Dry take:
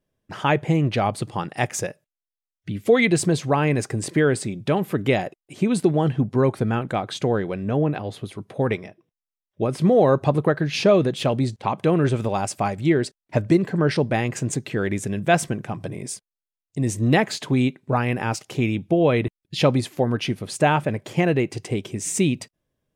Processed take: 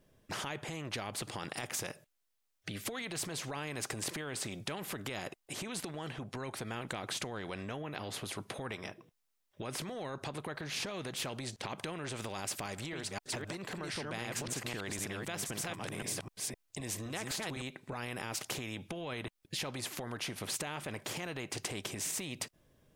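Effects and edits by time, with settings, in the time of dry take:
12.67–17.62 s: chunks repeated in reverse 258 ms, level -4 dB
whole clip: compression, threshold -26 dBFS; peak limiter -24 dBFS; spectrum-flattening compressor 2:1; trim +4 dB

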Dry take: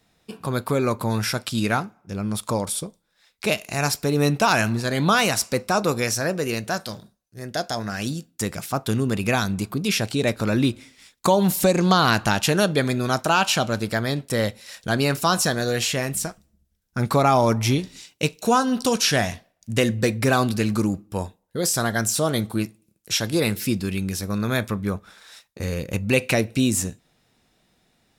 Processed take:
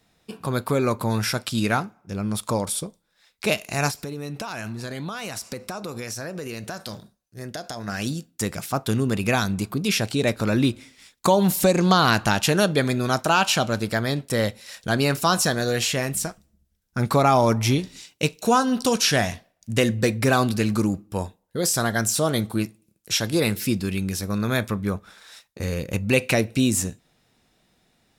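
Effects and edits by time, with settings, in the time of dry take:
3.90–7.88 s: compression 10:1, threshold -28 dBFS

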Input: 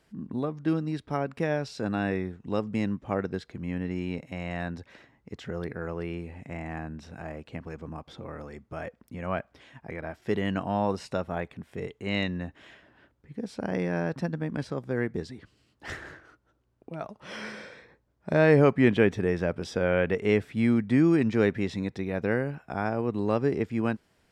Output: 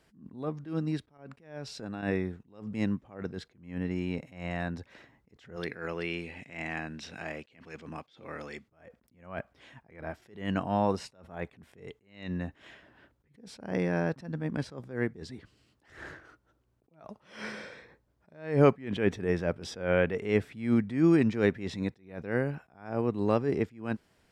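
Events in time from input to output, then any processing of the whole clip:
1.17–2.03 s: compression 4:1, threshold -35 dBFS
5.56–8.68 s: frequency weighting D
whole clip: attacks held to a fixed rise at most 130 dB/s

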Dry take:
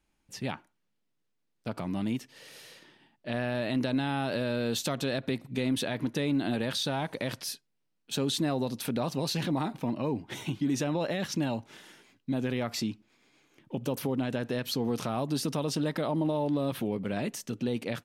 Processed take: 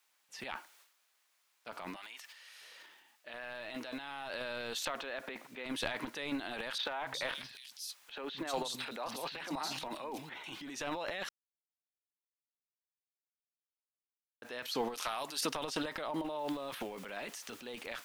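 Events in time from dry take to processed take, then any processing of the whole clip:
1.96–2.61 s: high-pass 960 Hz
3.28–4.30 s: feedback comb 160 Hz, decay 0.16 s
4.85–5.66 s: band-pass 200–2500 Hz
6.78–10.44 s: three bands offset in time mids, lows, highs 170/360 ms, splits 210/3300 Hz
11.29–14.42 s: mute
14.94–15.41 s: tilt EQ +3 dB/octave
16.39 s: noise floor step -68 dB -60 dB
whole clip: high-pass 1.1 kHz 12 dB/octave; transient shaper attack -1 dB, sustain +12 dB; tilt EQ -2.5 dB/octave

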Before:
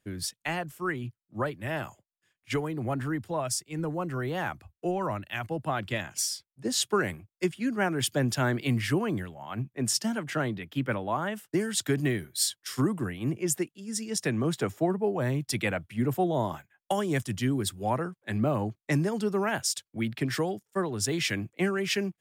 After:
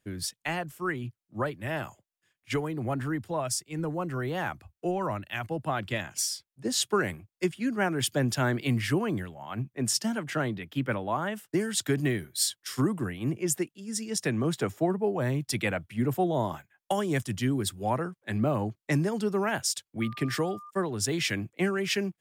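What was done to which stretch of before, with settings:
20.00–20.69 s: whistle 1.2 kHz -43 dBFS

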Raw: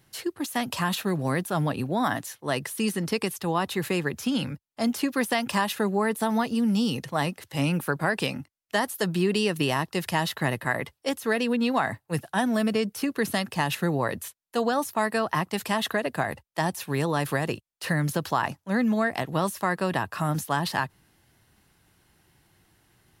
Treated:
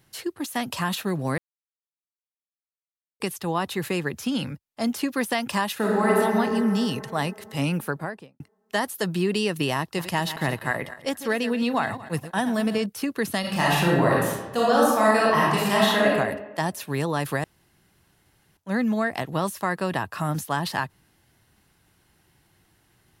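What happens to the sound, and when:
1.38–3.20 s: mute
5.75–6.17 s: reverb throw, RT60 2.9 s, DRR -5 dB
7.77–8.40 s: studio fade out
9.79–12.86 s: backward echo that repeats 115 ms, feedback 45%, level -12 dB
13.40–16.08 s: reverb throw, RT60 1.1 s, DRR -6 dB
17.44–18.57 s: room tone

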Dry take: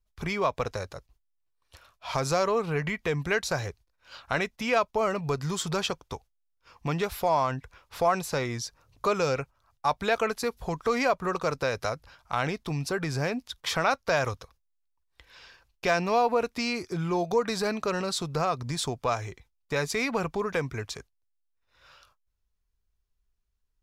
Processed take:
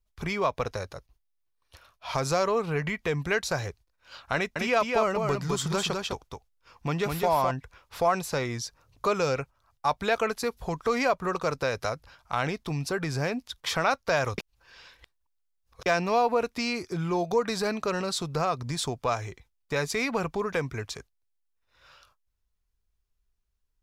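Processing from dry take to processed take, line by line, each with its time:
0.51–2.15 s: band-stop 7.5 kHz, Q 8.3
4.35–7.51 s: delay 206 ms -4 dB
14.38–15.86 s: reverse

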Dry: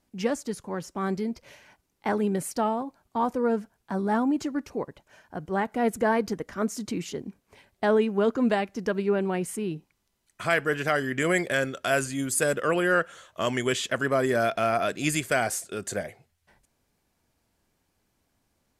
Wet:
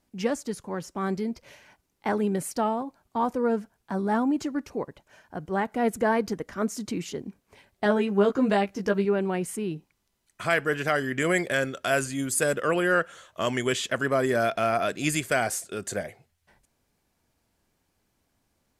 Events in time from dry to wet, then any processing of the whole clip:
7.84–9.05 s: doubling 15 ms -3.5 dB

